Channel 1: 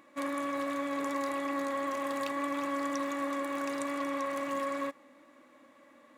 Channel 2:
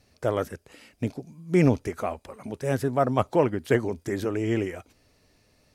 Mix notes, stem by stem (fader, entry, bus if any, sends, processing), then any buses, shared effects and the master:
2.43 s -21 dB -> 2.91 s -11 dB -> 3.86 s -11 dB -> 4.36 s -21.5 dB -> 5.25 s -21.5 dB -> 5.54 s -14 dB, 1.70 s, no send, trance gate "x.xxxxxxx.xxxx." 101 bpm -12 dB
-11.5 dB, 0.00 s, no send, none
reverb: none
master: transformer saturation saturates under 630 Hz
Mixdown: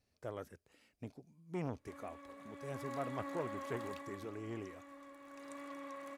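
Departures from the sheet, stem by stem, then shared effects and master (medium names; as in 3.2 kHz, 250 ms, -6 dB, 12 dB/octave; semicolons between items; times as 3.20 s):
stem 1: missing trance gate "x.xxxxxxx.xxxx." 101 bpm -12 dB; stem 2 -11.5 dB -> -18.0 dB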